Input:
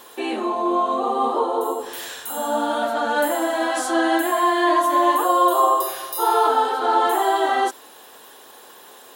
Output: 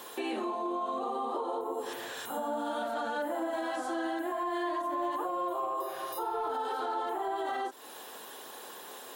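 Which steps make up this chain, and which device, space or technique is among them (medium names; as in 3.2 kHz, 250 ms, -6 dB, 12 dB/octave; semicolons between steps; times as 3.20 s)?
podcast mastering chain (high-pass 86 Hz 24 dB/octave; de-esser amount 90%; compression 3:1, threshold -32 dBFS, peak gain reduction 12.5 dB; peak limiter -25 dBFS, peak gain reduction 4.5 dB; MP3 96 kbps 48 kHz)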